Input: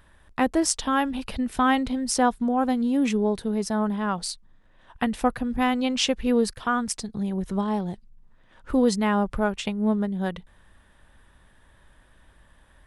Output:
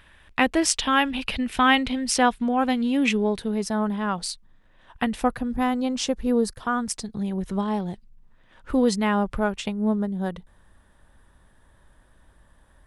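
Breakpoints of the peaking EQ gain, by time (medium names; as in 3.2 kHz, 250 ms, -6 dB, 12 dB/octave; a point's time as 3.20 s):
peaking EQ 2.6 kHz 1.3 oct
3.00 s +11.5 dB
3.68 s +2.5 dB
5.15 s +2.5 dB
5.85 s -9 dB
6.41 s -9 dB
7.16 s +2.5 dB
9.39 s +2.5 dB
9.95 s -6.5 dB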